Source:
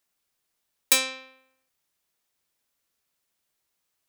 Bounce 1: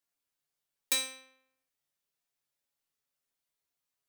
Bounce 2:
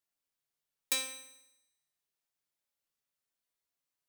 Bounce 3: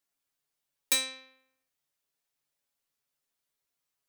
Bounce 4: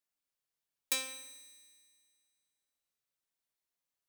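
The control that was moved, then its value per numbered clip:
resonator, decay: 0.4, 0.99, 0.17, 2.1 s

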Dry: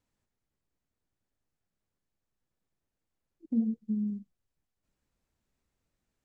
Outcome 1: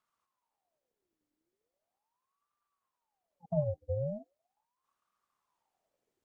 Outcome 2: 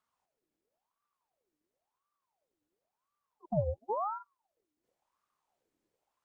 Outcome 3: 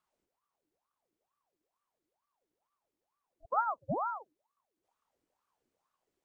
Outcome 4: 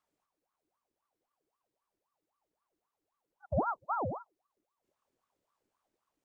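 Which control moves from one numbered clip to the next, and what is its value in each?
ring modulator with a swept carrier, at: 0.39, 0.95, 2.2, 3.8 Hz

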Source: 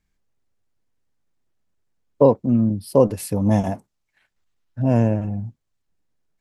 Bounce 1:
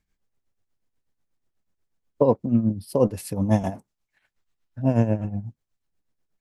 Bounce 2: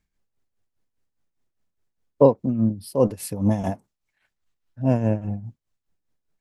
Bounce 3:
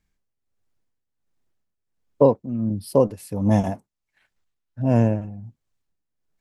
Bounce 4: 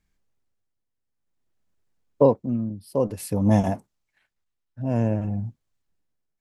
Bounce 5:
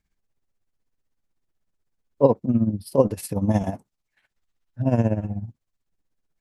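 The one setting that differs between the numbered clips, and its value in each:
tremolo, rate: 8.2, 4.9, 1.4, 0.54, 16 Hz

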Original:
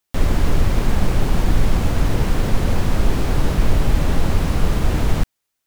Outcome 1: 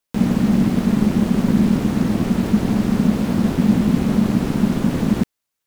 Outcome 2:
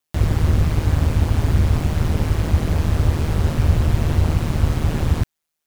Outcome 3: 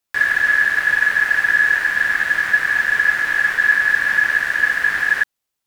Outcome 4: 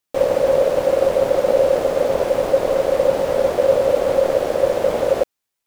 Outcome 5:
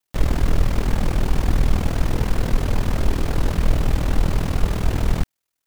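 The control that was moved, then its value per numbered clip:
ring modulator, frequency: 210, 78, 1700, 540, 20 Hz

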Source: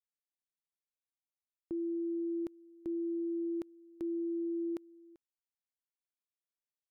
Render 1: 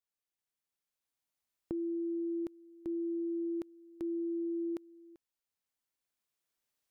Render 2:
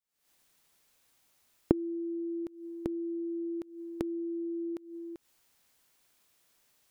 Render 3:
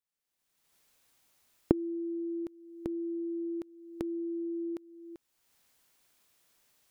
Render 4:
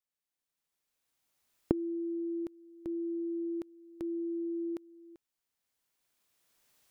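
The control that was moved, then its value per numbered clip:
recorder AGC, rising by: 5.1, 89, 34, 13 dB/s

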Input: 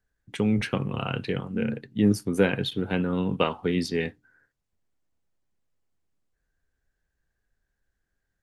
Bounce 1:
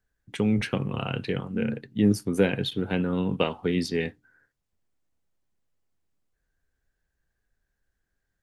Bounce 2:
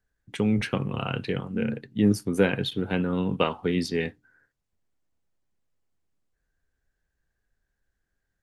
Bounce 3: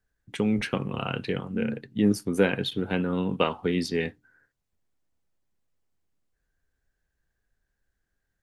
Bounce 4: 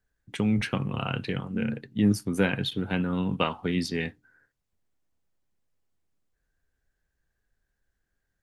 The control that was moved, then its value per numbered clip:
dynamic EQ, frequency: 1200, 9000, 110, 440 Hz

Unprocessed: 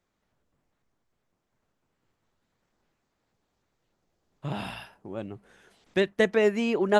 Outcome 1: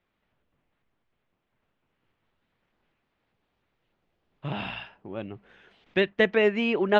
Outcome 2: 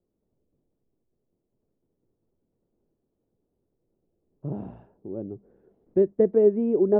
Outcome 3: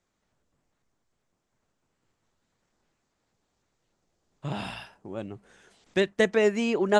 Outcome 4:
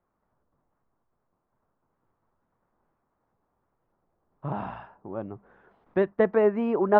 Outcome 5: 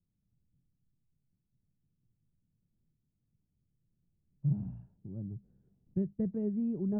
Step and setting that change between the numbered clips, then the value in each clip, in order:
synth low-pass, frequency: 2900, 410, 7800, 1100, 150 Hz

